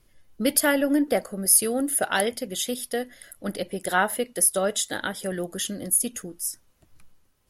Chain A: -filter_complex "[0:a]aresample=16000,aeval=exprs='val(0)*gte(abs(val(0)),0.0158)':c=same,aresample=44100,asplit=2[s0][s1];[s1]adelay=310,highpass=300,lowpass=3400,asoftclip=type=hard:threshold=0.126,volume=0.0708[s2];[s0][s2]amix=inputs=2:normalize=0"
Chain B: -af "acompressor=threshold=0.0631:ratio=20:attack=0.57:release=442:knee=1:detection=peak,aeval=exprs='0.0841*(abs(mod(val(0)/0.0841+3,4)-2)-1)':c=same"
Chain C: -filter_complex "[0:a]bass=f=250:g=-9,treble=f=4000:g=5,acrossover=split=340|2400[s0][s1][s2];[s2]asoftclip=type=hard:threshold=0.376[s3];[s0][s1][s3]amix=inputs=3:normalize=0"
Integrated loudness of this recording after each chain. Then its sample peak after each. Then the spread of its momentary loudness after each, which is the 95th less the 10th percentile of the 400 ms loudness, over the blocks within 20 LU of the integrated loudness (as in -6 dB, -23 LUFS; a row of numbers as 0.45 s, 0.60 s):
-27.0 LUFS, -33.0 LUFS, -21.5 LUFS; -10.0 dBFS, -21.5 dBFS, -5.5 dBFS; 13 LU, 5 LU, 16 LU